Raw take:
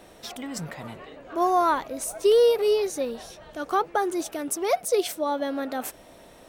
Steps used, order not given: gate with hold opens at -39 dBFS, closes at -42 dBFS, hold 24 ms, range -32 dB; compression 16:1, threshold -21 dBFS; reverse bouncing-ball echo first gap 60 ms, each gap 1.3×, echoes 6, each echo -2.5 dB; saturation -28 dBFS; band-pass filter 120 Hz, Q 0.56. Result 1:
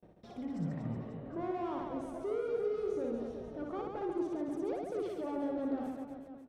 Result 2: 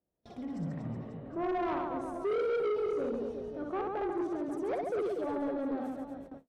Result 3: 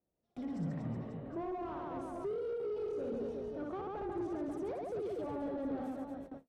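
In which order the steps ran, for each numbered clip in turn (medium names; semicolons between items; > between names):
saturation > gate with hold > reverse bouncing-ball echo > compression > band-pass filter; band-pass filter > compression > reverse bouncing-ball echo > saturation > gate with hold; reverse bouncing-ball echo > compression > saturation > band-pass filter > gate with hold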